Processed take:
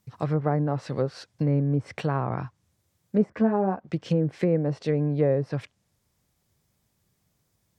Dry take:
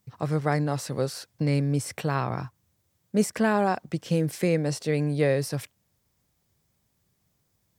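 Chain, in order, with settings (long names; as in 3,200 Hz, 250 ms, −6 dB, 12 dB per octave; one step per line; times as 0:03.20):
treble cut that deepens with the level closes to 930 Hz, closed at −20.5 dBFS
0:03.30–0:03.88: string-ensemble chorus
level +1 dB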